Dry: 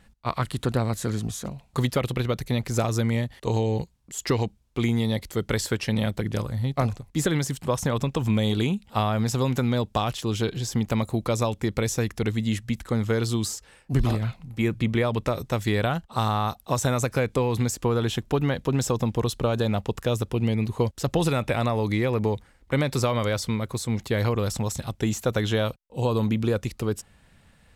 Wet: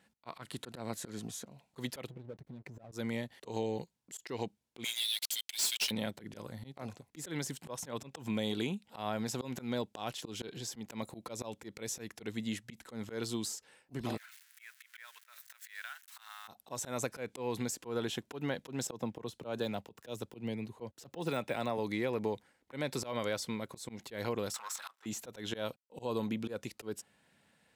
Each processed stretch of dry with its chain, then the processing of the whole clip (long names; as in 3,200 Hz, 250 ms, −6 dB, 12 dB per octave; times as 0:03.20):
0:02.07–0:02.92: expanding power law on the bin magnitudes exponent 1.9 + downward compressor, threshold −29 dBFS + slack as between gear wheels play −39 dBFS
0:04.84–0:05.91: Butterworth high-pass 2,700 Hz + leveller curve on the samples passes 5
0:14.17–0:16.48: spike at every zero crossing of −25 dBFS + four-pole ladder high-pass 1,400 Hz, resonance 55%
0:18.87–0:21.78: de-essing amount 80% + multiband upward and downward expander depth 100%
0:24.54–0:25.06: downward compressor 4 to 1, threshold −37 dBFS + leveller curve on the samples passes 3 + high-pass with resonance 1,200 Hz, resonance Q 5.7
whole clip: high-pass filter 210 Hz 12 dB per octave; notch filter 1,200 Hz, Q 10; volume swells 123 ms; level −8 dB